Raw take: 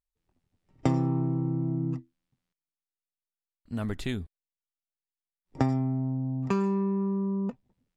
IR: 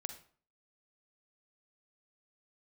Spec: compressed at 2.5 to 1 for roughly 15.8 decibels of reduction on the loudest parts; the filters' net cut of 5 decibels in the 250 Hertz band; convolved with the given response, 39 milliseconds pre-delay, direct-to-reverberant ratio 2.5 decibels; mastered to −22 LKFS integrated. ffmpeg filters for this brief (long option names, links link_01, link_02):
-filter_complex "[0:a]equalizer=frequency=250:width_type=o:gain=-7,acompressor=threshold=-48dB:ratio=2.5,asplit=2[link_01][link_02];[1:a]atrim=start_sample=2205,adelay=39[link_03];[link_02][link_03]afir=irnorm=-1:irlink=0,volume=-0.5dB[link_04];[link_01][link_04]amix=inputs=2:normalize=0,volume=21dB"